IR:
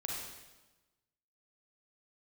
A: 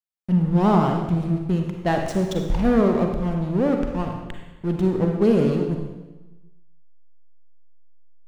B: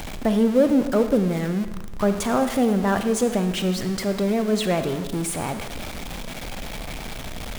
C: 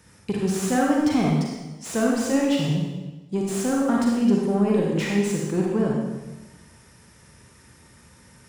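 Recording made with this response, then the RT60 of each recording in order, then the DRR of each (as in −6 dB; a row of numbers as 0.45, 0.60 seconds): C; 1.1, 1.1, 1.1 seconds; 2.5, 8.5, −2.5 decibels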